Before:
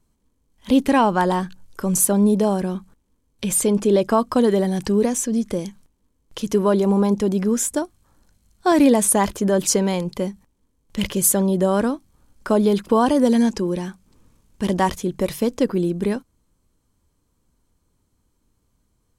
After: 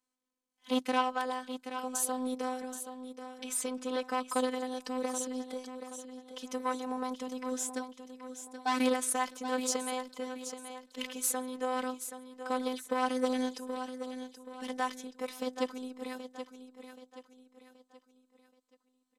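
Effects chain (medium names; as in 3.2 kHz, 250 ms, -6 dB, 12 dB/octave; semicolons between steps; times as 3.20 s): Chebyshev shaper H 3 -13 dB, 4 -45 dB, 5 -34 dB, 6 -36 dB, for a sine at -4.5 dBFS; frequency weighting A; in parallel at -3 dB: peak limiter -16.5 dBFS, peak gain reduction 8.5 dB; on the sum: robot voice 255 Hz; feedback delay 777 ms, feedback 40%, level -10 dB; trim -7.5 dB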